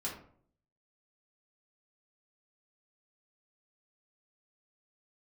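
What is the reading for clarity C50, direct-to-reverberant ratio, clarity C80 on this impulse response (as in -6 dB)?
6.0 dB, -5.5 dB, 10.0 dB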